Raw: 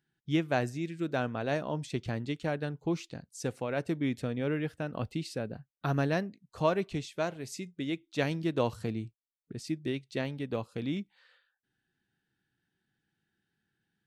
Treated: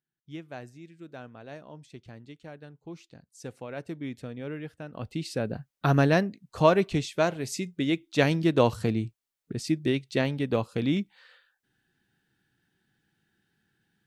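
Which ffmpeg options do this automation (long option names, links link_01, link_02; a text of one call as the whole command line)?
ffmpeg -i in.wav -af "volume=7.5dB,afade=type=in:start_time=2.83:duration=0.78:silence=0.446684,afade=type=in:start_time=4.94:duration=0.61:silence=0.237137" out.wav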